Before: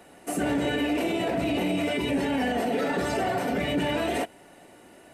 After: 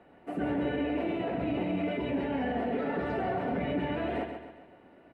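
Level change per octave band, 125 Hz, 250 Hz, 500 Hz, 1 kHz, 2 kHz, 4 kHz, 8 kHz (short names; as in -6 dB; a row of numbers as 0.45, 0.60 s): -3.5 dB, -4.0 dB, -4.5 dB, -5.0 dB, -8.0 dB, -13.0 dB, under -30 dB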